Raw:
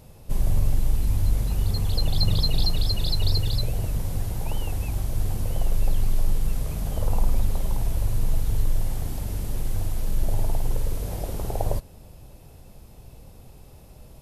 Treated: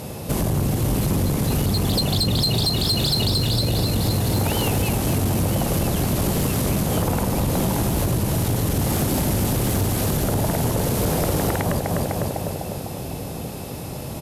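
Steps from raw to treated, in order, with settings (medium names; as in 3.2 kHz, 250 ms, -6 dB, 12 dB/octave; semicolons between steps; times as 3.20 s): octave divider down 1 oct, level 0 dB; high-pass 130 Hz 12 dB/octave; on a send: feedback delay 251 ms, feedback 60%, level -8.5 dB; on the sum: compression 8:1, threshold -33 dBFS, peak gain reduction 13 dB; sine folder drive 9 dB, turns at -22 dBFS; trim +6 dB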